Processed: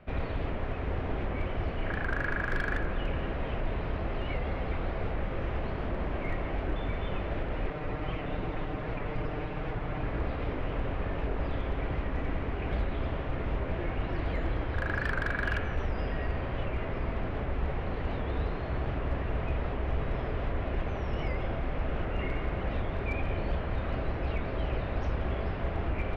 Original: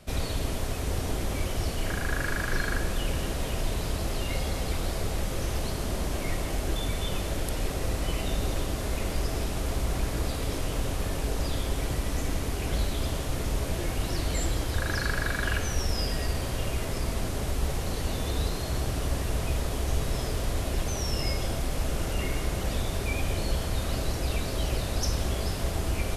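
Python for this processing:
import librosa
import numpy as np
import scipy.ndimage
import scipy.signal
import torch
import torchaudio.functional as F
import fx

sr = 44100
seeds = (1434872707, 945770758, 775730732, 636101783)

y = fx.lower_of_two(x, sr, delay_ms=6.6, at=(7.7, 10.06))
y = scipy.signal.sosfilt(scipy.signal.butter(4, 2400.0, 'lowpass', fs=sr, output='sos'), y)
y = fx.low_shelf(y, sr, hz=370.0, db=-3.0)
y = np.clip(y, -10.0 ** (-22.0 / 20.0), 10.0 ** (-22.0 / 20.0))
y = fx.record_warp(y, sr, rpm=78.0, depth_cents=100.0)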